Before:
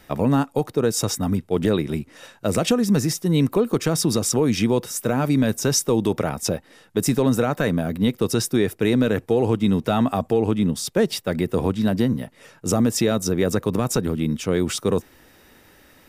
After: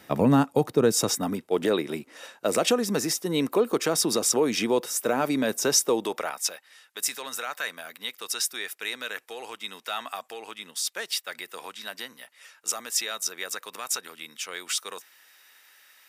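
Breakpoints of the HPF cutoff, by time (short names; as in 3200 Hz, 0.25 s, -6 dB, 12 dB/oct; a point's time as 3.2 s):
0.78 s 130 Hz
1.41 s 370 Hz
5.87 s 370 Hz
6.51 s 1500 Hz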